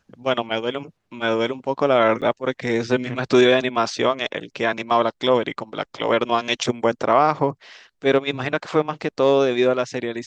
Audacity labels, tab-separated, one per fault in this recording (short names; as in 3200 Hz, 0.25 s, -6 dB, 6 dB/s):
2.210000	2.220000	gap 7.8 ms